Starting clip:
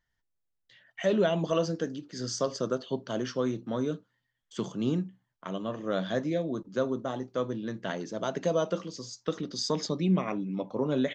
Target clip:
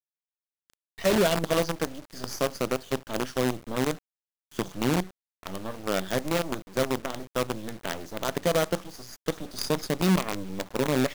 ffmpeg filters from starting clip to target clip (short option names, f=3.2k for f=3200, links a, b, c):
-af "acrusher=bits=5:dc=4:mix=0:aa=0.000001,volume=2dB"